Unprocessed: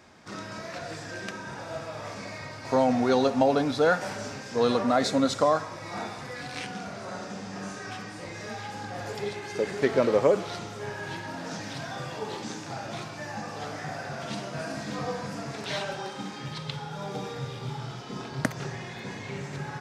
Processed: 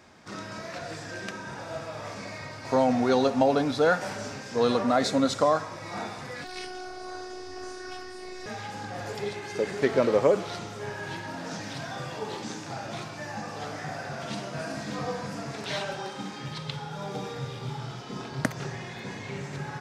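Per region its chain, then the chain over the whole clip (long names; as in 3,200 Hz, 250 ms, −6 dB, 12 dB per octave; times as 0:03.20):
0:06.44–0:08.46: notch filter 780 Hz, Q 11 + phases set to zero 369 Hz + flutter between parallel walls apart 6.1 metres, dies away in 0.31 s
whole clip: no processing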